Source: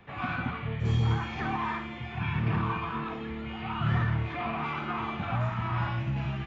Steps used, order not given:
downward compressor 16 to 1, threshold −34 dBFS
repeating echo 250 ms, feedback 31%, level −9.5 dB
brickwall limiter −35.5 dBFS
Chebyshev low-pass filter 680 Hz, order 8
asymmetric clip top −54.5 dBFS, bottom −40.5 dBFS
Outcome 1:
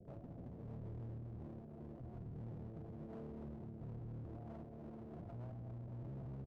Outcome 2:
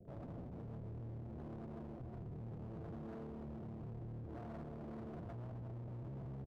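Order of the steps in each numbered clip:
repeating echo, then downward compressor, then brickwall limiter, then Chebyshev low-pass filter, then asymmetric clip
Chebyshev low-pass filter, then downward compressor, then repeating echo, then brickwall limiter, then asymmetric clip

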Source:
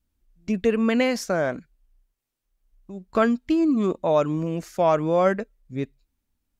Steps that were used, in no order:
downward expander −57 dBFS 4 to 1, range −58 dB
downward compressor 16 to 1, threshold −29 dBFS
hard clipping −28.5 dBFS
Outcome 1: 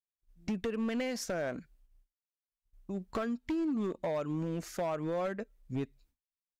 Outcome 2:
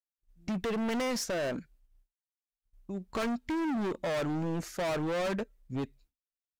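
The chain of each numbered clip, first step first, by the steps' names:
downward expander, then downward compressor, then hard clipping
hard clipping, then downward expander, then downward compressor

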